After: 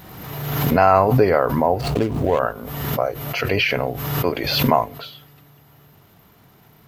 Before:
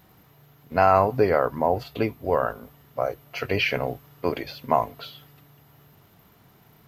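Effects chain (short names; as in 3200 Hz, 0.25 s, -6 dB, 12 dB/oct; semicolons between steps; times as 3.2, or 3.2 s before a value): 1.81–2.39 median filter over 25 samples; backwards sustainer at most 38 dB/s; gain +3.5 dB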